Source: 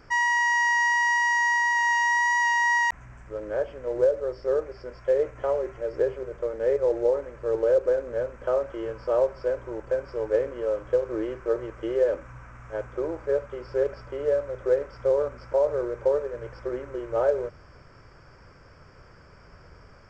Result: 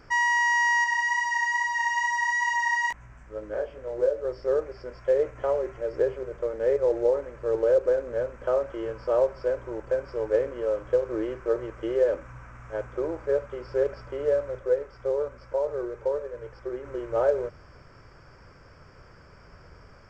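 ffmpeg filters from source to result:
ffmpeg -i in.wav -filter_complex "[0:a]asettb=1/sr,asplit=3[link_01][link_02][link_03];[link_01]atrim=end=0.844[link_04];[link_02]atrim=start=0.84:end=4.25,asetpts=PTS-STARTPTS,afade=type=in:duration=0.004:curve=qsin,afade=type=out:start_time=3.406:duration=0.004:curve=qsin,flanger=delay=18:depth=2.4:speed=2.3[link_05];[link_03]atrim=start=4.246[link_06];[link_04][link_05]acrossfade=duration=0.004:curve1=hsin:curve2=qsin[link_07];[link_07][link_06]acrossfade=duration=0.004:curve1=qsin:curve2=hsin,asettb=1/sr,asplit=3[link_08][link_09][link_10];[link_08]atrim=end=14.594[link_11];[link_09]atrim=start=14.59:end=16.85,asetpts=PTS-STARTPTS,afade=type=in:duration=0.004:curve=qsin,afade=type=out:start_time=2.256:duration=0.004:curve=qsin,flanger=delay=1.7:depth=1:regen=71:speed=1.2:shape=triangular[link_12];[link_10]atrim=start=16.846[link_13];[link_11][link_12]acrossfade=duration=0.004:curve1=hsin:curve2=qsin[link_14];[link_14][link_13]acrossfade=duration=0.004:curve1=qsin:curve2=hsin" out.wav

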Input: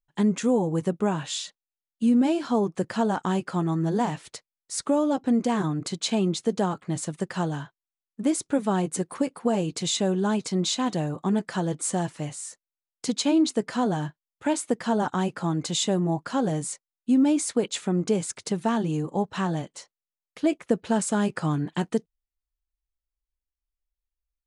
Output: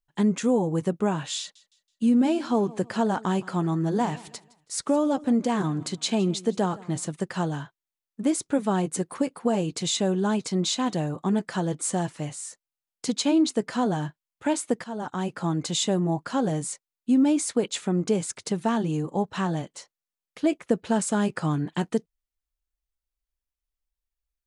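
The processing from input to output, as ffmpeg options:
ffmpeg -i in.wav -filter_complex "[0:a]asettb=1/sr,asplit=3[link_01][link_02][link_03];[link_01]atrim=end=1.394[link_04];[link_02]atrim=start=1.39:end=7.07,asetpts=PTS-STARTPTS,afade=type=in:duration=0.004:curve=qsin,afade=type=out:start_time=5.676:duration=0.004:curve=qsin,aecho=1:1:163|326|489:0.0891|0.033|0.0122,atrim=end_sample=250488[link_05];[link_03]atrim=start=7.066[link_06];[link_04][link_05]acrossfade=duration=0.004:curve1=hsin:curve2=qsin[link_07];[link_07][link_06]acrossfade=duration=0.004:curve1=qsin:curve2=hsin,asplit=2[link_08][link_09];[link_08]atrim=end=14.84,asetpts=PTS-STARTPTS,afade=type=out:start_time=14.836:duration=0.004:curve=hsin:silence=0.199526[link_10];[link_09]atrim=start=14.84,asetpts=PTS-STARTPTS,afade=type=in:duration=0.61:silence=0.199526[link_11];[link_10][link_11]concat=n=2:v=0:a=1" out.wav

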